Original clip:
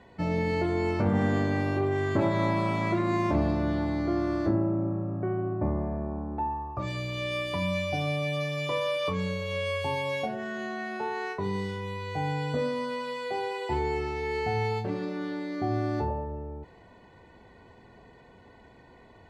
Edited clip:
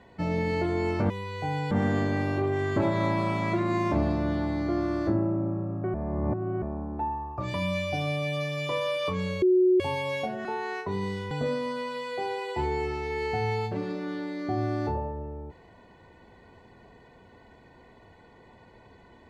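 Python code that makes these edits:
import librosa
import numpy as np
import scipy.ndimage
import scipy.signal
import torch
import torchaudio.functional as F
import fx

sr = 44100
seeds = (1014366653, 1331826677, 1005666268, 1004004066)

y = fx.edit(x, sr, fx.reverse_span(start_s=5.33, length_s=0.68),
    fx.cut(start_s=6.93, length_s=0.61),
    fx.bleep(start_s=9.42, length_s=0.38, hz=367.0, db=-17.0),
    fx.cut(start_s=10.45, length_s=0.52),
    fx.move(start_s=11.83, length_s=0.61, to_s=1.1), tone=tone)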